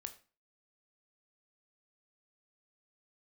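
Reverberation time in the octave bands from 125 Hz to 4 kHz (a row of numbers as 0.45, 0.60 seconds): 0.40, 0.40, 0.35, 0.35, 0.35, 0.30 seconds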